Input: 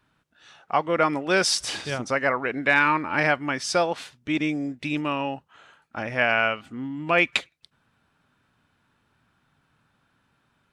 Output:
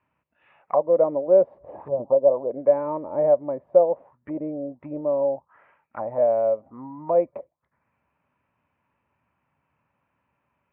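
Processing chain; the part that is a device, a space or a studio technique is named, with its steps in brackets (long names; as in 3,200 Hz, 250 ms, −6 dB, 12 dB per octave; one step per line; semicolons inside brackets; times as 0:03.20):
envelope filter bass rig (envelope-controlled low-pass 570–2,700 Hz down, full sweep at −25 dBFS; loudspeaker in its box 62–2,100 Hz, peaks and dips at 70 Hz +7 dB, 570 Hz +8 dB, 980 Hz +8 dB, 1,500 Hz −9 dB)
0:01.88–0:02.51: Butterworth low-pass 1,100 Hz 48 dB per octave
level −8 dB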